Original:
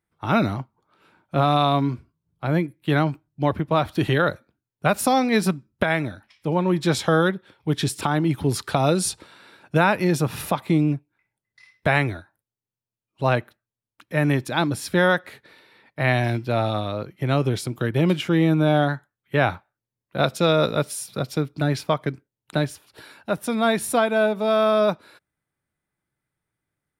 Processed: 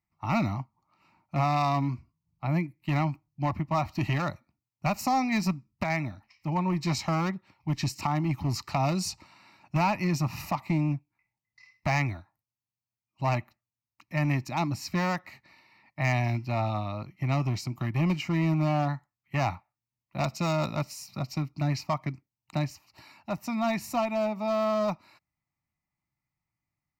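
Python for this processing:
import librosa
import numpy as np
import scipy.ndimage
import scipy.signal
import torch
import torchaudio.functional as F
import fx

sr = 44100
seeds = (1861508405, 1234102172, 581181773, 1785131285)

y = fx.clip_asym(x, sr, top_db=-16.0, bottom_db=-11.5)
y = fx.fixed_phaser(y, sr, hz=2300.0, stages=8)
y = y * librosa.db_to_amplitude(-2.5)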